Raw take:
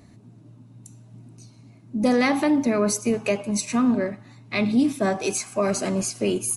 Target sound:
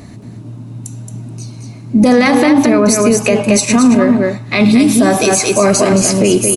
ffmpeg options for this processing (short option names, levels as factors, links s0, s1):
-filter_complex "[0:a]asettb=1/sr,asplit=3[s0][s1][s2];[s0]atrim=end=4.604[s3];[s1]atrim=start=4.6:end=5.27,asetpts=PTS-STARTPTS,afade=t=in:d=0.004:c=qsin,afade=t=out:st=0.666:d=0.004:c=qsin,highshelf=f=5100:g=8.5[s4];[s2]atrim=start=5.266[s5];[s3][s4]acrossfade=d=0.004:c1=hsin:c2=qsin[s6];[s6][s5]acrossfade=d=0.004:c1=qsin:c2=hsin,aecho=1:1:223:0.501,alimiter=level_in=7.5:limit=0.891:release=50:level=0:latency=1,volume=0.891"